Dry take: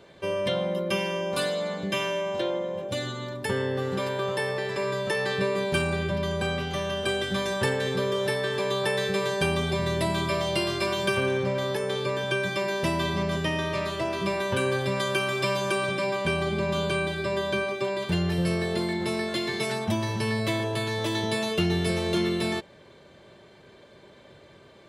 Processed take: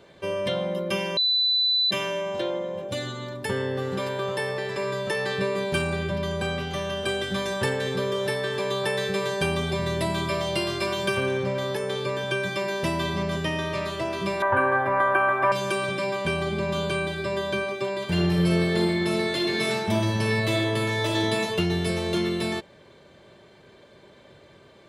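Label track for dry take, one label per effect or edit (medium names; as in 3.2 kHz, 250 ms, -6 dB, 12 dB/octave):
1.170000	1.910000	bleep 3.99 kHz -19 dBFS
14.420000	15.520000	FFT filter 110 Hz 0 dB, 170 Hz -16 dB, 290 Hz +5 dB, 450 Hz -5 dB, 720 Hz +13 dB, 1.7 kHz +9 dB, 2.7 kHz -9 dB, 4.5 kHz -26 dB, 7.5 kHz -22 dB, 13 kHz -10 dB
18.040000	21.400000	reverb throw, RT60 1.1 s, DRR 0 dB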